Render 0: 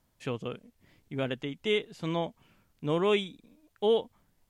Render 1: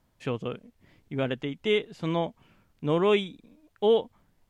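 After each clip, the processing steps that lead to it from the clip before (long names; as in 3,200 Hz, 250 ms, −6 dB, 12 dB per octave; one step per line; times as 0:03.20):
high-shelf EQ 4,600 Hz −7.5 dB
level +3.5 dB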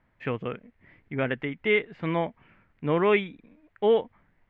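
low-pass with resonance 2,000 Hz, resonance Q 2.9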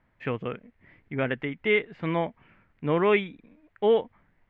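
no processing that can be heard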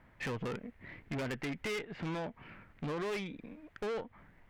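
downward compressor 8 to 1, threshold −32 dBFS, peak gain reduction 15 dB
tube saturation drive 42 dB, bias 0.45
level +8 dB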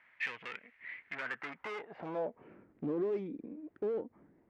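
band-pass filter sweep 2,200 Hz → 330 Hz, 0:00.96–0:02.68
level +7.5 dB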